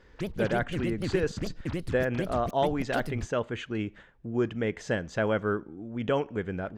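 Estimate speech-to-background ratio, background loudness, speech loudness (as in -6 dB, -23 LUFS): 5.5 dB, -36.0 LUFS, -30.5 LUFS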